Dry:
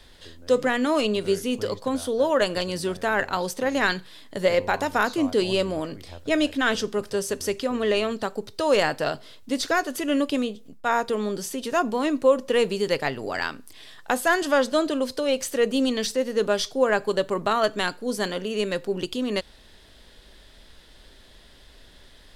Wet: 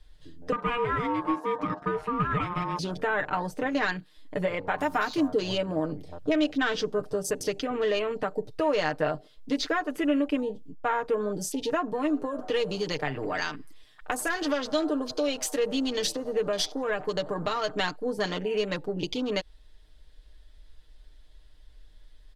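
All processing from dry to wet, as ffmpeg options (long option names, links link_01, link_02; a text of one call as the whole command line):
ffmpeg -i in.wav -filter_complex "[0:a]asettb=1/sr,asplit=3[link_01][link_02][link_03];[link_01]atrim=end=0.524[link_04];[link_02]atrim=start=0.52:end=2.79,asetpts=PTS-STARTPTS,afade=type=in:duration=0.004:curve=qsin,afade=type=out:start_time=2.266:duration=0.004:curve=qsin,lowpass=frequency=3600:poles=1,aeval=exprs='val(0)*sin(2*PI*710*n/s)':channel_layout=same,aeval=exprs='clip(val(0),-1,0.0944)':channel_layout=same[link_05];[link_03]atrim=start=2.786[link_06];[link_04][link_05]acrossfade=duration=0.004:curve1=hsin:curve2=qsin[link_07];[link_07][link_06]acrossfade=duration=0.004:curve1=qsin:curve2=hsin,asettb=1/sr,asplit=3[link_08][link_09][link_10];[link_08]atrim=end=4.784[link_11];[link_09]atrim=start=4.78:end=5.28,asetpts=PTS-STARTPTS,afade=type=in:duration=0.004:curve=qsin,afade=type=out:start_time=0.496:duration=0.004:curve=qsin,highshelf=frequency=5000:gain=11,bandreject=frequency=480:width=5.9,acrusher=bits=6:mix=0:aa=0.5[link_12];[link_10]atrim=start=5.276[link_13];[link_11][link_12]acrossfade=duration=0.004:curve1=hsin:curve2=qsin[link_14];[link_14][link_13]acrossfade=duration=0.004:curve1=qsin:curve2=hsin,asettb=1/sr,asplit=3[link_15][link_16][link_17];[link_15]atrim=end=11.924[link_18];[link_16]atrim=start=11.92:end=17.71,asetpts=PTS-STARTPTS,afade=type=in:duration=0.004:curve=qsin,afade=type=out:start_time=5.786:duration=0.004:curve=qsin,acrossover=split=140|3000[link_19][link_20][link_21];[link_20]acompressor=threshold=-28dB:ratio=2:attack=3.2:release=140:knee=2.83:detection=peak[link_22];[link_19][link_22][link_21]amix=inputs=3:normalize=0,asplit=6[link_23][link_24][link_25][link_26][link_27][link_28];[link_24]adelay=90,afreqshift=110,volume=-20dB[link_29];[link_25]adelay=180,afreqshift=220,volume=-24.7dB[link_30];[link_26]adelay=270,afreqshift=330,volume=-29.5dB[link_31];[link_27]adelay=360,afreqshift=440,volume=-34.2dB[link_32];[link_28]adelay=450,afreqshift=550,volume=-38.9dB[link_33];[link_23][link_29][link_30][link_31][link_32][link_33]amix=inputs=6:normalize=0,atrim=end_sample=255339[link_34];[link_17]atrim=start=17.706[link_35];[link_18][link_34]acrossfade=duration=0.004:curve1=hsin:curve2=qsin[link_36];[link_36][link_35]acrossfade=duration=0.004:curve1=qsin:curve2=hsin,acompressor=threshold=-25dB:ratio=4,afwtdn=0.01,aecho=1:1:6.6:0.69" out.wav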